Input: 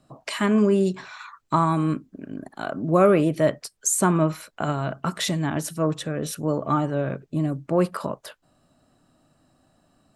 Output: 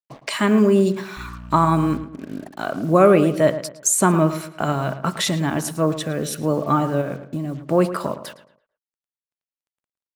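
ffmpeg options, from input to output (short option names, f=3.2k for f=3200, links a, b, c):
-filter_complex "[0:a]lowshelf=f=170:g=-2.5,asettb=1/sr,asplit=3[a][b][c];[a]atrim=end=1.174[d];[b]atrim=start=1.17:end=2.04,asetpts=PTS-STARTPTS,afade=t=in:d=0.004:c=qsin,afade=t=out:st=0.866:d=0.004:c=qsin,aeval=exprs='val(0)+0.0126*(sin(2*PI*60*n/s)+sin(2*PI*2*60*n/s)/2+sin(2*PI*3*60*n/s)/3+sin(2*PI*4*60*n/s)/4+sin(2*PI*5*60*n/s)/5)':c=same[e];[c]atrim=start=2.036[f];[d][e]acrossfade=d=0.004:c1=hsin:c2=qsin[g];[g][f]acrossfade=d=0.004:c1=qsin:c2=hsin,acrusher=bits=7:mix=0:aa=0.5,asettb=1/sr,asplit=3[h][i][j];[h]atrim=end=7.014[k];[i]atrim=start=7.01:end=7.58,asetpts=PTS-STARTPTS,afade=t=in:d=0.004:c=qsin,afade=t=out:st=0.566:d=0.004:c=qsin,acompressor=threshold=-27dB:ratio=6[l];[j]atrim=start=7.576[m];[k][l]acrossfade=d=0.004:c1=hsin:c2=qsin[n];[n][m]acrossfade=d=0.004:c1=qsin:c2=hsin,asplit=2[o][p];[p]adelay=111,lowpass=f=2.5k:p=1,volume=-12dB,asplit=2[q][r];[r]adelay=111,lowpass=f=2.5k:p=1,volume=0.38,asplit=2[s][t];[t]adelay=111,lowpass=f=2.5k:p=1,volume=0.38,asplit=2[u][v];[v]adelay=111,lowpass=f=2.5k:p=1,volume=0.38[w];[q][s][u][w]amix=inputs=4:normalize=0[x];[o][x]amix=inputs=2:normalize=0,volume=4dB"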